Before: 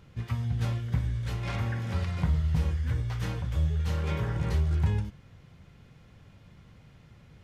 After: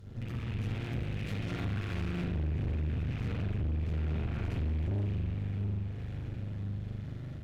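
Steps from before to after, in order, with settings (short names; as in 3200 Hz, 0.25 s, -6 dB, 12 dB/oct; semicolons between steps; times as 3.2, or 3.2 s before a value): rattling part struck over -31 dBFS, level -24 dBFS; 2.25–4.45 high shelf 4200 Hz -10 dB; limiter -25 dBFS, peak gain reduction 11 dB; fifteen-band EQ 100 Hz +9 dB, 1000 Hz -11 dB, 2500 Hz -10 dB; diffused feedback echo 0.612 s, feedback 47%, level -12 dB; spring tank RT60 1.6 s, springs 40 ms, chirp 30 ms, DRR -9 dB; compressor 2:1, threshold -35 dBFS, peak gain reduction 13 dB; one-sided clip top -47.5 dBFS, bottom -27 dBFS; AGC gain up to 3 dB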